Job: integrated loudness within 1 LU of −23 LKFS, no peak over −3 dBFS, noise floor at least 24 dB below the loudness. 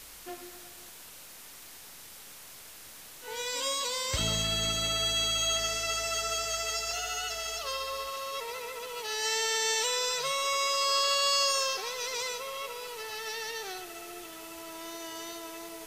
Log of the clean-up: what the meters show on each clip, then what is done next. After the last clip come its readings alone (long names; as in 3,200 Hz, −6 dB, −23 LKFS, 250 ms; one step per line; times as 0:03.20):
number of dropouts 2; longest dropout 1.8 ms; background noise floor −49 dBFS; target noise floor −54 dBFS; integrated loudness −29.5 LKFS; sample peak −17.0 dBFS; target loudness −23.0 LKFS
→ repair the gap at 0:04.18/0:06.91, 1.8 ms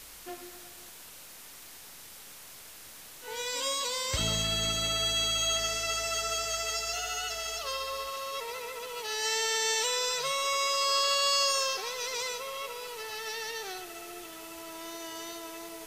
number of dropouts 0; background noise floor −49 dBFS; target noise floor −54 dBFS
→ noise reduction from a noise print 6 dB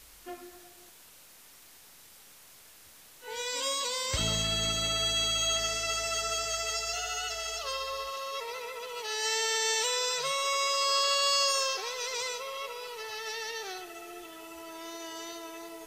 background noise floor −55 dBFS; integrated loudness −29.5 LKFS; sample peak −17.0 dBFS; target loudness −23.0 LKFS
→ level +6.5 dB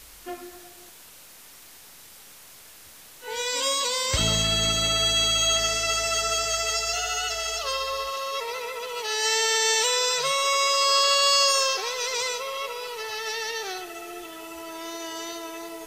integrated loudness −23.0 LKFS; sample peak −10.5 dBFS; background noise floor −48 dBFS